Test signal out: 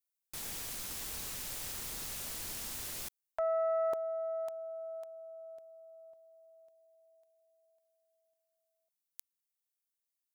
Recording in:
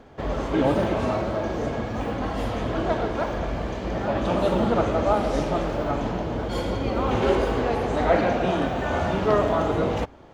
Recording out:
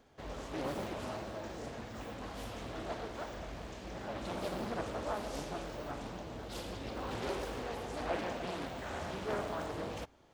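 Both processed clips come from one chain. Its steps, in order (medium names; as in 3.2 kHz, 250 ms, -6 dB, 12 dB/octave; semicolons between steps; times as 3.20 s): pre-emphasis filter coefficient 0.8; loudspeaker Doppler distortion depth 0.69 ms; trim -3 dB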